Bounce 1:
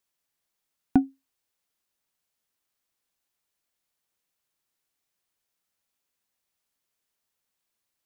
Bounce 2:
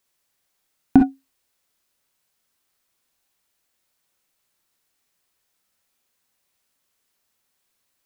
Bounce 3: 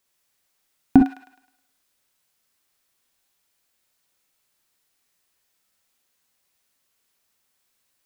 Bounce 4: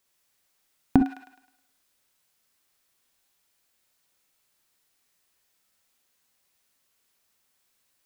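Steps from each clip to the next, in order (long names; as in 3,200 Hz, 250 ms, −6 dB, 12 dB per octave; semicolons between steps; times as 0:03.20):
reverb whose tail is shaped and stops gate 80 ms rising, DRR 3.5 dB; level +7 dB
delay with a high-pass on its return 105 ms, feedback 42%, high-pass 1,600 Hz, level −4.5 dB
downward compressor, threshold −15 dBFS, peak gain reduction 8 dB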